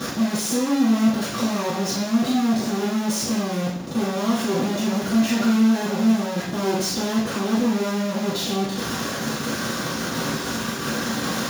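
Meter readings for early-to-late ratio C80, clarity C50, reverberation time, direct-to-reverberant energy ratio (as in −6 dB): 6.0 dB, 2.0 dB, 0.70 s, −9.5 dB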